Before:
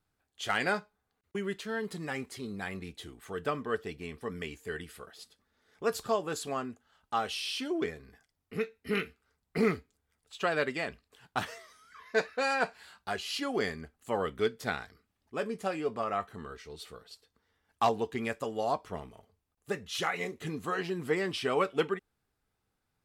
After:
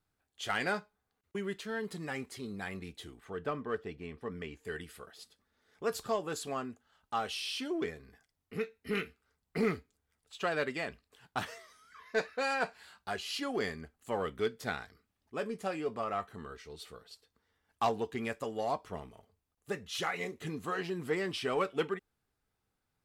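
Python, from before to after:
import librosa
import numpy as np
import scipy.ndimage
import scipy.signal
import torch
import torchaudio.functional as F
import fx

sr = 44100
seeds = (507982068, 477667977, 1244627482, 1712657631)

p1 = fx.lowpass(x, sr, hz=2200.0, slope=6, at=(3.2, 4.65))
p2 = np.clip(p1, -10.0 ** (-30.0 / 20.0), 10.0 ** (-30.0 / 20.0))
p3 = p1 + F.gain(torch.from_numpy(p2), -10.0).numpy()
y = F.gain(torch.from_numpy(p3), -4.5).numpy()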